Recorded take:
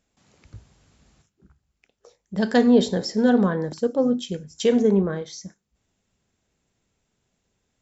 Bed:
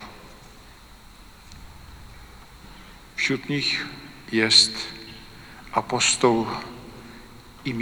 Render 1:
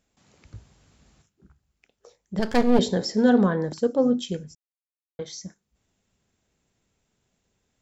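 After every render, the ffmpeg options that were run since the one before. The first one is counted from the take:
ffmpeg -i in.wav -filter_complex "[0:a]asettb=1/sr,asplit=3[link_01][link_02][link_03];[link_01]atrim=end=2.394[link_04];[link_02]atrim=start=2.39:end=2.79,asetpts=PTS-STARTPTS,afade=type=in:duration=0.004:curve=qsin,afade=type=out:start_time=0.396:duration=0.004:curve=qsin,aeval=exprs='max(val(0),0)':channel_layout=same[link_05];[link_03]atrim=start=2.786[link_06];[link_04][link_05]acrossfade=duration=0.004:curve1=hsin:curve2=qsin[link_07];[link_07][link_06]acrossfade=duration=0.004:curve1=qsin:curve2=hsin,asplit=3[link_08][link_09][link_10];[link_08]atrim=end=4.55,asetpts=PTS-STARTPTS,afade=type=out:start_time=4.546:duration=0.004:curve=hsin[link_11];[link_09]atrim=start=4.55:end=5.19,asetpts=PTS-STARTPTS,volume=0[link_12];[link_10]atrim=start=5.19,asetpts=PTS-STARTPTS,afade=type=in:duration=0.004:curve=hsin[link_13];[link_11][link_12][link_13]concat=n=3:v=0:a=1" out.wav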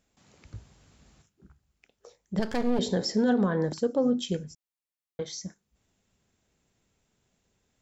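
ffmpeg -i in.wav -af "alimiter=limit=-16dB:level=0:latency=1:release=156" out.wav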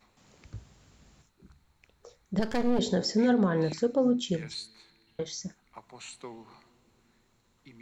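ffmpeg -i in.wav -i bed.wav -filter_complex "[1:a]volume=-25dB[link_01];[0:a][link_01]amix=inputs=2:normalize=0" out.wav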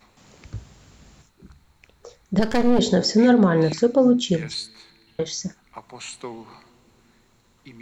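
ffmpeg -i in.wav -af "volume=8.5dB" out.wav

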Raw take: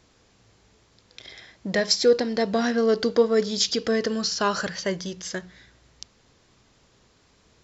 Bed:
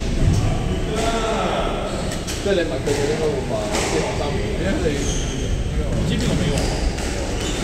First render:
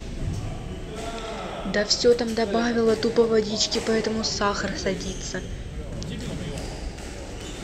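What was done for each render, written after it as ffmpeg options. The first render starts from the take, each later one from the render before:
ffmpeg -i in.wav -i bed.wav -filter_complex "[1:a]volume=-12dB[link_01];[0:a][link_01]amix=inputs=2:normalize=0" out.wav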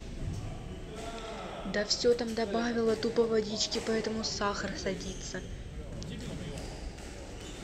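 ffmpeg -i in.wav -af "volume=-8dB" out.wav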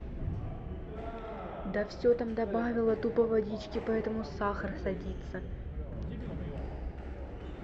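ffmpeg -i in.wav -af "lowpass=1600,equalizer=frequency=68:width=6.5:gain=10.5" out.wav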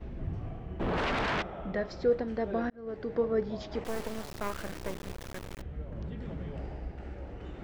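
ffmpeg -i in.wav -filter_complex "[0:a]asplit=3[link_01][link_02][link_03];[link_01]afade=type=out:start_time=0.79:duration=0.02[link_04];[link_02]aeval=exprs='0.0447*sin(PI/2*6.31*val(0)/0.0447)':channel_layout=same,afade=type=in:start_time=0.79:duration=0.02,afade=type=out:start_time=1.41:duration=0.02[link_05];[link_03]afade=type=in:start_time=1.41:duration=0.02[link_06];[link_04][link_05][link_06]amix=inputs=3:normalize=0,asettb=1/sr,asplit=3[link_07][link_08][link_09];[link_07]atrim=end=3.844[link_10];[link_08]atrim=start=3.84:end=5.62,asetpts=PTS-STARTPTS,afade=type=in:duration=0.004:curve=qsin,afade=type=out:start_time=1.776:duration=0.004:curve=qsin,acrusher=bits=4:dc=4:mix=0:aa=0.000001[link_11];[link_09]atrim=start=5.616[link_12];[link_10][link_11]acrossfade=duration=0.004:curve1=hsin:curve2=qsin[link_13];[link_13][link_12]acrossfade=duration=0.004:curve1=qsin:curve2=hsin,asplit=2[link_14][link_15];[link_14]atrim=end=2.7,asetpts=PTS-STARTPTS,afade=type=out:start_time=2.696:duration=0.004:curve=hsin[link_16];[link_15]atrim=start=2.7,asetpts=PTS-STARTPTS,afade=type=in:duration=0.61[link_17];[link_16][link_17]concat=n=2:v=0:a=1" out.wav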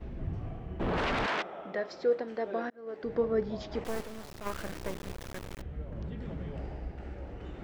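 ffmpeg -i in.wav -filter_complex "[0:a]asettb=1/sr,asplit=3[link_01][link_02][link_03];[link_01]atrim=end=1.264[link_04];[link_02]atrim=start=1.26:end=3.04,asetpts=PTS-STARTPTS,afade=type=in:duration=0.004:curve=qsin,afade=type=out:start_time=1.776:duration=0.004:curve=qsin,highpass=330[link_05];[link_03]atrim=start=3.036[link_06];[link_04][link_05]acrossfade=duration=0.004:curve1=hsin:curve2=qsin[link_07];[link_07][link_06]acrossfade=duration=0.004:curve1=qsin:curve2=hsin,asplit=3[link_08][link_09][link_10];[link_08]afade=type=out:start_time=4:duration=0.02[link_11];[link_09]aeval=exprs='(tanh(22.4*val(0)+0.5)-tanh(0.5))/22.4':channel_layout=same,afade=type=in:start_time=4:duration=0.02,afade=type=out:start_time=4.45:duration=0.02[link_12];[link_10]afade=type=in:start_time=4.45:duration=0.02[link_13];[link_11][link_12][link_13]amix=inputs=3:normalize=0" out.wav

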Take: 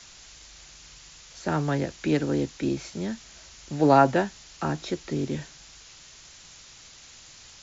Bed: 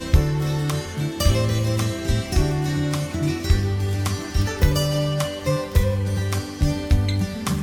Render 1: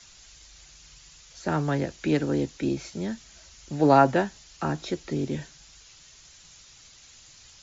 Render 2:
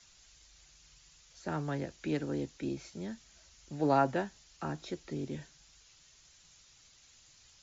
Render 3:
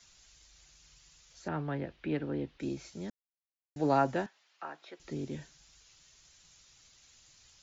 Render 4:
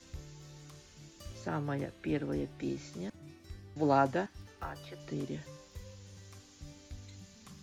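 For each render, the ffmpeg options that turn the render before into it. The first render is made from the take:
ffmpeg -i in.wav -af "afftdn=noise_reduction=6:noise_floor=-50" out.wav
ffmpeg -i in.wav -af "volume=-9.5dB" out.wav
ffmpeg -i in.wav -filter_complex "[0:a]asettb=1/sr,asplit=3[link_01][link_02][link_03];[link_01]atrim=end=1.484[link_04];[link_02]atrim=start=1.48:end=2.6,asetpts=PTS-STARTPTS,afade=type=in:duration=0.004:curve=qsin,afade=type=out:start_time=1.116:duration=0.004:curve=qsin,lowpass=frequency=3400:width=0.5412,lowpass=frequency=3400:width=1.3066[link_05];[link_03]atrim=start=2.596[link_06];[link_04][link_05]acrossfade=duration=0.004:curve1=hsin:curve2=qsin[link_07];[link_07][link_06]acrossfade=duration=0.004:curve1=qsin:curve2=hsin,asettb=1/sr,asplit=3[link_08][link_09][link_10];[link_08]atrim=end=4.264[link_11];[link_09]atrim=start=4.26:end=5,asetpts=PTS-STARTPTS,afade=type=in:duration=0.004:curve=qsin,afade=type=out:start_time=0.736:duration=0.004:curve=qsin,highpass=680,lowpass=2800[link_12];[link_10]atrim=start=4.996[link_13];[link_11][link_12]acrossfade=duration=0.004:curve1=hsin:curve2=qsin[link_14];[link_14][link_13]acrossfade=duration=0.004:curve1=qsin:curve2=hsin,asplit=3[link_15][link_16][link_17];[link_15]atrim=end=3.1,asetpts=PTS-STARTPTS,afade=type=out:start_time=3.096:duration=0.004:curve=hsin[link_18];[link_16]atrim=start=3.1:end=3.76,asetpts=PTS-STARTPTS,volume=0[link_19];[link_17]atrim=start=3.76,asetpts=PTS-STARTPTS,afade=type=in:duration=0.004:curve=hsin[link_20];[link_18][link_19][link_20]concat=n=3:v=0:a=1" out.wav
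ffmpeg -i in.wav -i bed.wav -filter_complex "[1:a]volume=-29.5dB[link_01];[0:a][link_01]amix=inputs=2:normalize=0" out.wav

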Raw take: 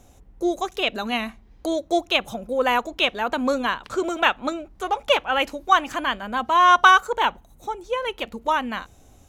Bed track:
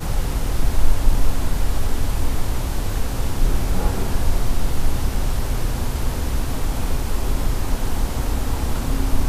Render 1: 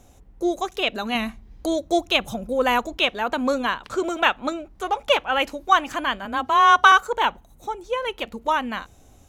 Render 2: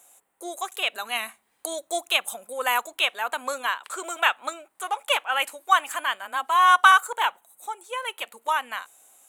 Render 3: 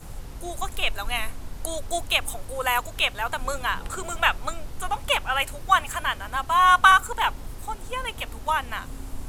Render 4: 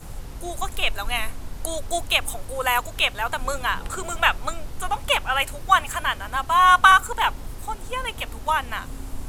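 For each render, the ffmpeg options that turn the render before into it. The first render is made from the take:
ffmpeg -i in.wav -filter_complex "[0:a]asettb=1/sr,asplit=3[link_01][link_02][link_03];[link_01]atrim=end=1.154[link_04];[link_02]atrim=start=1.15:end=2.97,asetpts=PTS-STARTPTS,afade=type=in:duration=0.004:curve=qsin,afade=type=out:start_time=1.816:duration=0.004:curve=qsin,bass=frequency=250:gain=6,treble=frequency=4000:gain=3[link_05];[link_03]atrim=start=2.966[link_06];[link_04][link_05]acrossfade=duration=0.004:curve1=hsin:curve2=qsin[link_07];[link_07][link_06]acrossfade=duration=0.004:curve1=qsin:curve2=hsin,asettb=1/sr,asplit=3[link_08][link_09][link_10];[link_08]atrim=end=6.254[link_11];[link_09]atrim=start=6.25:end=6.92,asetpts=PTS-STARTPTS,afade=type=in:duration=0.004:curve=qsin,afade=type=out:start_time=0.666:duration=0.004:curve=qsin,afreqshift=23[link_12];[link_10]atrim=start=6.916[link_13];[link_11][link_12]acrossfade=duration=0.004:curve1=hsin:curve2=qsin[link_14];[link_14][link_13]acrossfade=duration=0.004:curve1=qsin:curve2=hsin" out.wav
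ffmpeg -i in.wav -af "highpass=900,highshelf=frequency=7000:width_type=q:width=3:gain=8" out.wav
ffmpeg -i in.wav -i bed.wav -filter_complex "[1:a]volume=-16dB[link_01];[0:a][link_01]amix=inputs=2:normalize=0" out.wav
ffmpeg -i in.wav -af "volume=2dB,alimiter=limit=-2dB:level=0:latency=1" out.wav

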